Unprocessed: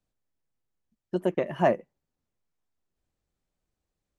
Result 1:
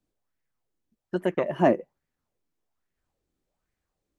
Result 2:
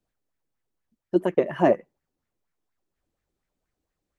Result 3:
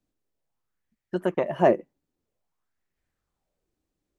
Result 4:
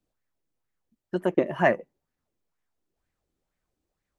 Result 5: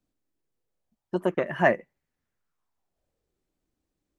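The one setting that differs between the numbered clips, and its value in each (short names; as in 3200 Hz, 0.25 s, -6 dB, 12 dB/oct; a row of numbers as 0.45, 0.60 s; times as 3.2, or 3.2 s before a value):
LFO bell, rate: 1.2, 4.2, 0.51, 2.1, 0.26 Hz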